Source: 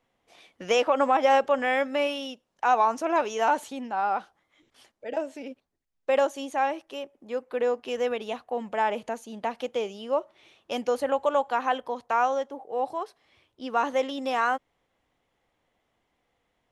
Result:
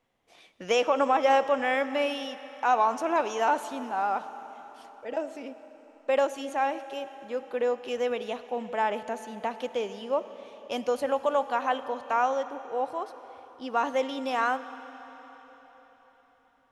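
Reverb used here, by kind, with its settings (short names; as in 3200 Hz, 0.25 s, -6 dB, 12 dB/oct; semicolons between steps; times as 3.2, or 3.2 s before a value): digital reverb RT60 4.5 s, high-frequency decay 0.95×, pre-delay 20 ms, DRR 12.5 dB; gain -1.5 dB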